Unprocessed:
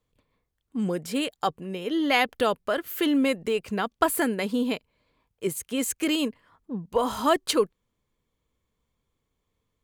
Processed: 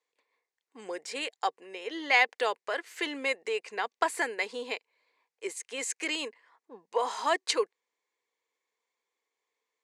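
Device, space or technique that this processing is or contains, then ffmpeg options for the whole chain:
phone speaker on a table: -af "highpass=f=470:w=0.5412,highpass=f=470:w=1.3066,equalizer=f=600:t=q:w=4:g=-9,equalizer=f=1.3k:t=q:w=4:g=-8,equalizer=f=2k:t=q:w=4:g=5,equalizer=f=3.2k:t=q:w=4:g=-6,lowpass=f=7.9k:w=0.5412,lowpass=f=7.9k:w=1.3066"

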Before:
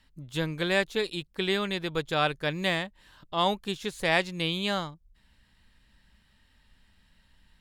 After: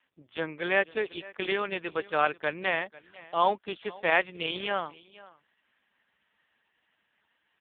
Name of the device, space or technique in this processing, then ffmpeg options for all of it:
satellite phone: -filter_complex "[0:a]asettb=1/sr,asplit=3[a][b][c];[a]atrim=end=3.944[d];[b]atrim=start=3.94:end=4.37,asetpts=PTS-STARTPTS,afade=t=in:d=0.004:c=qsin,afade=t=out:st=0.426:d=0.004:c=qsin,adynamicequalizer=threshold=0.00398:dfrequency=6800:dqfactor=1.4:tfrequency=6800:tqfactor=1.4:attack=5:release=100:ratio=0.375:range=3:mode=boostabove:tftype=bell[e];[c]atrim=start=4.366[f];[d][e]acrossfade=d=0.004:c1=hsin:c2=qsin[g];[g][f]acrossfade=d=0.004:c1=qsin:c2=hsin,highpass=390,lowpass=3.2k,aecho=1:1:492:0.0891,volume=2.5dB" -ar 8000 -c:a libopencore_amrnb -b:a 4750

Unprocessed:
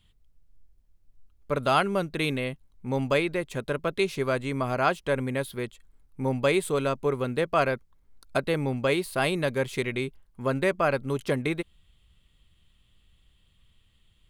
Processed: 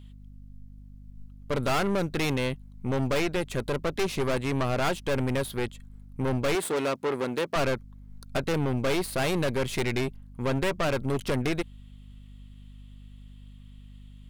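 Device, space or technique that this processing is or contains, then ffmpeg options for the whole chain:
valve amplifier with mains hum: -filter_complex "[0:a]aeval=exprs='(tanh(35.5*val(0)+0.7)-tanh(0.7))/35.5':c=same,aeval=exprs='val(0)+0.00224*(sin(2*PI*50*n/s)+sin(2*PI*2*50*n/s)/2+sin(2*PI*3*50*n/s)/3+sin(2*PI*4*50*n/s)/4+sin(2*PI*5*50*n/s)/5)':c=same,asettb=1/sr,asplit=3[a][b][c];[a]atrim=end=6.554[d];[b]atrim=start=6.55:end=7.56,asetpts=PTS-STARTPTS,afade=t=in:d=0.004:c=qsin,afade=t=out:st=1.006:d=0.004:c=qsin,highpass=230[e];[c]atrim=start=7.556[f];[d][e]acrossfade=d=0.004:c1=hsin:c2=qsin[g];[g][f]acrossfade=d=0.004:c1=qsin:c2=hsin,volume=7.5dB"

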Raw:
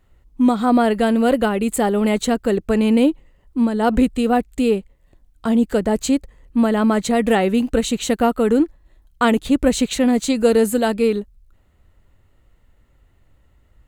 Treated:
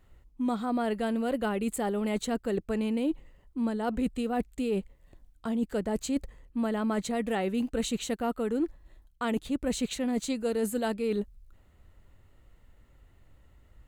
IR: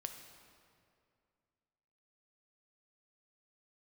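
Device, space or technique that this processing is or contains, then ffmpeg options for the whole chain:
compression on the reversed sound: -af "areverse,acompressor=threshold=-25dB:ratio=6,areverse,volume=-2dB"

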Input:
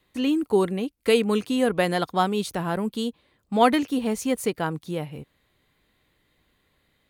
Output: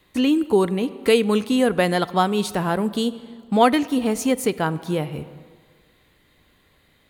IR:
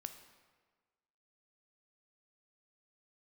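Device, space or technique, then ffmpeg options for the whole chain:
ducked reverb: -filter_complex "[0:a]asplit=3[a][b][c];[1:a]atrim=start_sample=2205[d];[b][d]afir=irnorm=-1:irlink=0[e];[c]apad=whole_len=312944[f];[e][f]sidechaincompress=threshold=-26dB:ratio=8:attack=7.1:release=671,volume=8dB[g];[a][g]amix=inputs=2:normalize=0"

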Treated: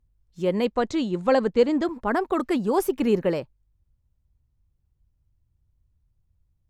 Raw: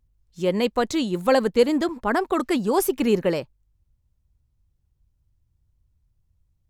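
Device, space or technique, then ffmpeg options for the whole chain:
behind a face mask: -filter_complex "[0:a]highshelf=f=2.7k:g=-7.5,asettb=1/sr,asplit=3[a][b][c];[a]atrim=end=0.654[d];[b]atrim=start=0.65:end=1.85,asetpts=PTS-STARTPTS,afade=t=in:d=0.004:c=qsin,afade=t=out:st=1.196:d=0.004:c=qsin,lowpass=f=8k:w=0.5412,lowpass=f=8k:w=1.3066[e];[c]atrim=start=1.846[f];[d][e]acrossfade=d=0.004:c1=hsin:c2=qsin[g];[g][f]acrossfade=d=0.004:c1=qsin:c2=hsin,volume=-1dB"

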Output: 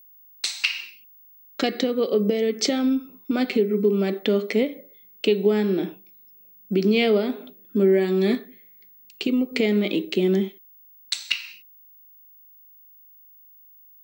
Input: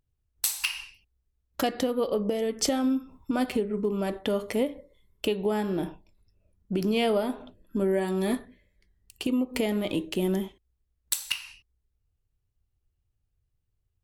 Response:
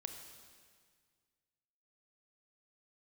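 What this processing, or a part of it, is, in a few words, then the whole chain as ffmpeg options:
old television with a line whistle: -af "highpass=f=190:w=0.5412,highpass=f=190:w=1.3066,equalizer=f=200:t=q:w=4:g=7,equalizer=f=400:t=q:w=4:g=7,equalizer=f=630:t=q:w=4:g=-3,equalizer=f=940:t=q:w=4:g=-10,equalizer=f=2.2k:t=q:w=4:g=8,equalizer=f=4k:t=q:w=4:g=8,lowpass=f=6.7k:w=0.5412,lowpass=f=6.7k:w=1.3066,aeval=exprs='val(0)+0.00282*sin(2*PI*15625*n/s)':c=same,volume=2.5dB"

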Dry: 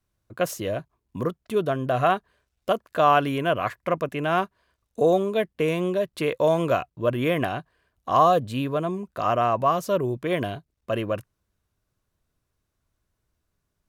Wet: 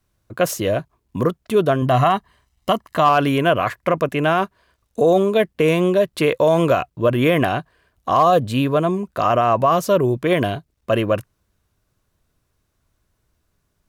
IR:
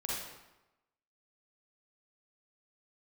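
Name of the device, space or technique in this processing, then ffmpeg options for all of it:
clipper into limiter: -filter_complex "[0:a]asettb=1/sr,asplit=3[a][b][c];[a]atrim=end=1.824[d];[b]atrim=start=1.82:end=3.09,asetpts=PTS-STARTPTS,afade=t=in:d=0.004:c=qsin,afade=t=out:st=1.266:d=0.004:c=qsin,aecho=1:1:1:0.57,atrim=end_sample=56007[e];[c]atrim=start=3.086[f];[d][e]acrossfade=d=0.004:c1=hsin:c2=qsin[g];[g][f]acrossfade=d=0.004:c1=qsin:c2=hsin,asoftclip=type=hard:threshold=-9.5dB,alimiter=limit=-15dB:level=0:latency=1:release=25,volume=8dB"

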